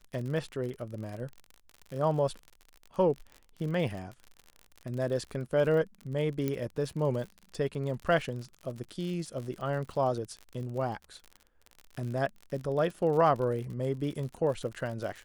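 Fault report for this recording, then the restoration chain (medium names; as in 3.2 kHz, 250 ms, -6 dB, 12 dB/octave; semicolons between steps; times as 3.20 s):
crackle 52 per s -37 dBFS
6.48 s: pop -18 dBFS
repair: de-click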